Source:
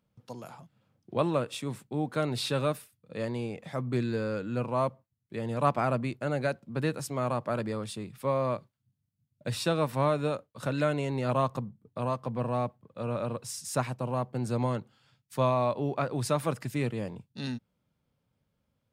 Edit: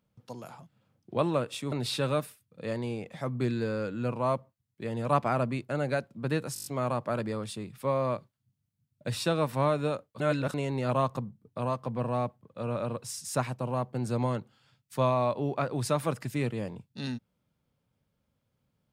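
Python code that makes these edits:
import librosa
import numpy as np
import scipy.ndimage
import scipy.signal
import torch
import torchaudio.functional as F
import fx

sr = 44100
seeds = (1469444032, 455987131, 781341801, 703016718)

y = fx.edit(x, sr, fx.cut(start_s=1.72, length_s=0.52),
    fx.stutter(start_s=7.06, slice_s=0.02, count=7),
    fx.reverse_span(start_s=10.6, length_s=0.34), tone=tone)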